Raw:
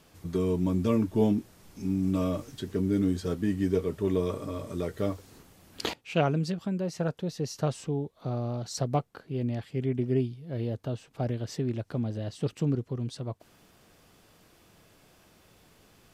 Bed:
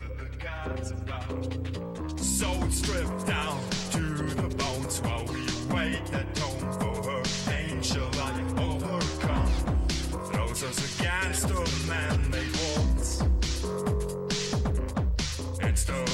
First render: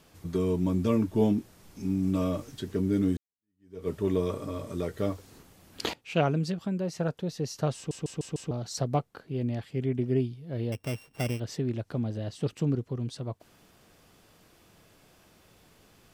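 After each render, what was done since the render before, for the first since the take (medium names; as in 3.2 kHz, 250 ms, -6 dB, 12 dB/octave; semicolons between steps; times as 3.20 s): 3.17–3.88 s: fade in exponential; 7.76 s: stutter in place 0.15 s, 5 plays; 10.72–11.40 s: sorted samples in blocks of 16 samples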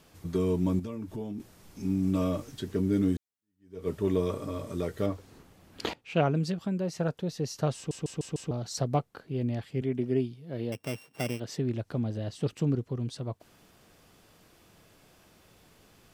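0.79–1.40 s: compression 4:1, threshold -35 dBFS; 5.06–6.35 s: treble shelf 4.2 kHz -8 dB; 9.81–11.58 s: high-pass 150 Hz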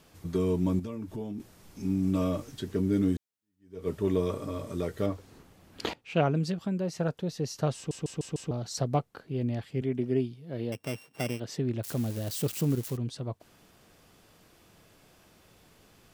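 11.83–12.97 s: zero-crossing glitches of -30 dBFS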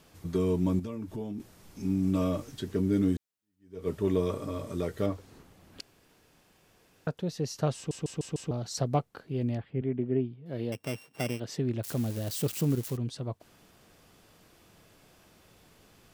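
5.81–7.07 s: room tone; 9.57–10.46 s: distance through air 490 m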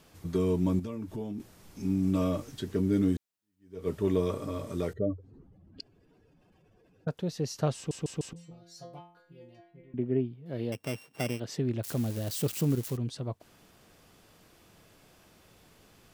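4.93–7.08 s: spectral contrast enhancement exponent 2.2; 8.33–9.94 s: inharmonic resonator 170 Hz, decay 0.55 s, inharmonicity 0.002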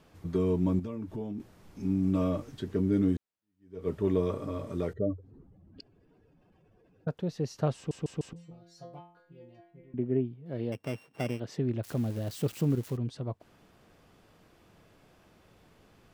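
treble shelf 3.7 kHz -11 dB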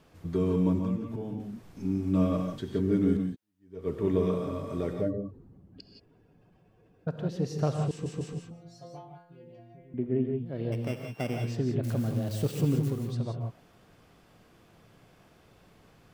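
gated-style reverb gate 200 ms rising, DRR 3 dB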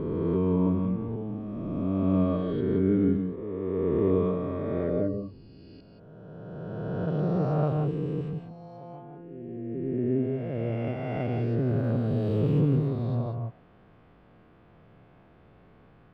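reverse spectral sustain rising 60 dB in 2.78 s; distance through air 480 m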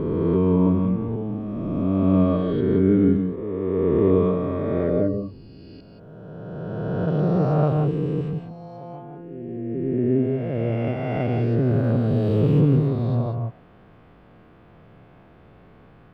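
trim +6 dB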